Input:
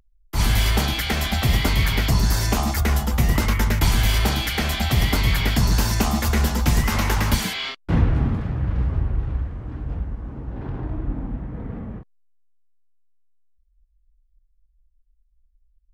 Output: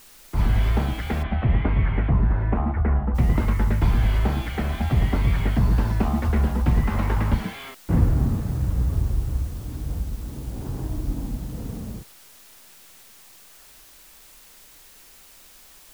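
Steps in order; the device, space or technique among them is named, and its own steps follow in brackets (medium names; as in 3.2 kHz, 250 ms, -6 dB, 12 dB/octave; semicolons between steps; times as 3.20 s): cassette deck with a dirty head (tape spacing loss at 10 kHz 44 dB; wow and flutter; white noise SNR 27 dB); 1.22–3.14 s: low-pass 3.1 kHz -> 1.9 kHz 24 dB/octave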